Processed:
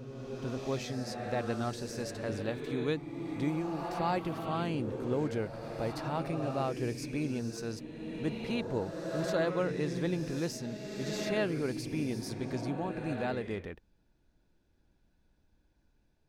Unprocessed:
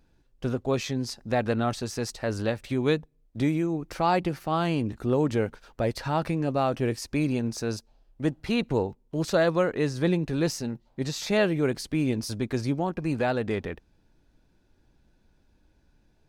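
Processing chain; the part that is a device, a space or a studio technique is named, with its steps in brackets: reverse reverb (reverse; reverb RT60 2.7 s, pre-delay 55 ms, DRR 4 dB; reverse); gain -8.5 dB

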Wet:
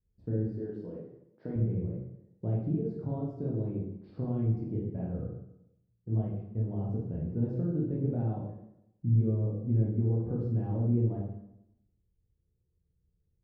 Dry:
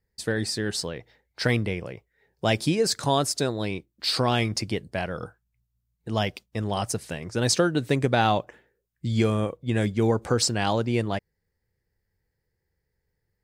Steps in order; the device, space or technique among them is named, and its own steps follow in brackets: 0.56–1.56 HPF 240 Hz 12 dB/oct; television next door (compressor, threshold -24 dBFS, peak gain reduction 8 dB; LPF 270 Hz 12 dB/oct; reverb RT60 0.80 s, pre-delay 14 ms, DRR -4.5 dB); gain -3.5 dB

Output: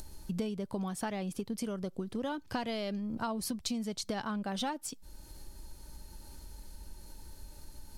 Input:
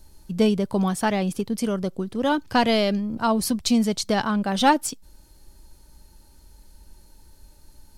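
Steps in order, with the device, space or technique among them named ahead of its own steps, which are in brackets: upward and downward compression (upward compressor, threshold -41 dBFS; compressor 8:1, threshold -33 dBFS, peak gain reduction 20 dB)

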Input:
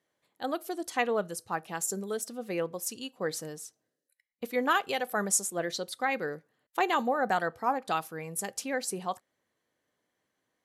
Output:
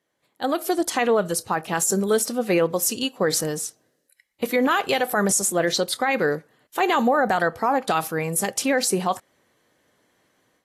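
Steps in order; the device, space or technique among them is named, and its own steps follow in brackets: low-bitrate web radio (AGC gain up to 11 dB; limiter -14.5 dBFS, peak gain reduction 10.5 dB; gain +3 dB; AAC 48 kbps 32000 Hz)

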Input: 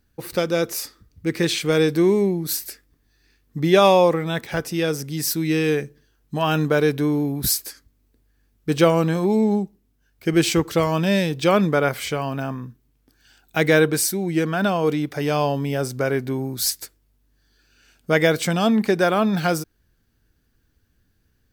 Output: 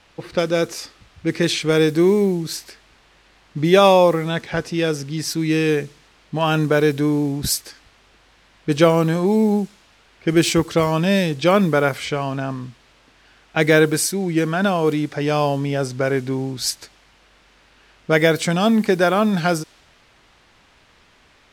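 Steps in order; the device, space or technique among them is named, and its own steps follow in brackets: cassette deck with a dynamic noise filter (white noise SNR 27 dB; low-pass opened by the level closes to 2900 Hz, open at -14.5 dBFS); gain +2 dB

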